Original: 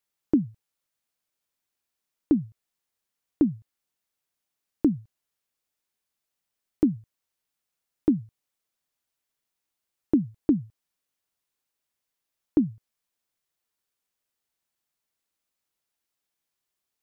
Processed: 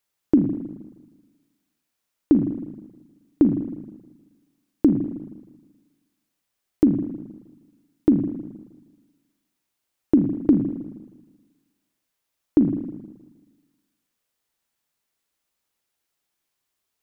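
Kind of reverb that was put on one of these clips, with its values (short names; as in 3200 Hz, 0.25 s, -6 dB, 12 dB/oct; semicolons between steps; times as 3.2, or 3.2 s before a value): spring tank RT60 1.3 s, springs 39/53 ms, chirp 80 ms, DRR 5.5 dB; gain +4.5 dB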